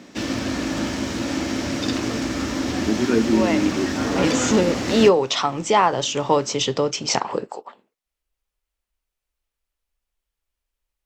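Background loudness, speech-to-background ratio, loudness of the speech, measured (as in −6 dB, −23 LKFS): −23.0 LKFS, 2.0 dB, −21.0 LKFS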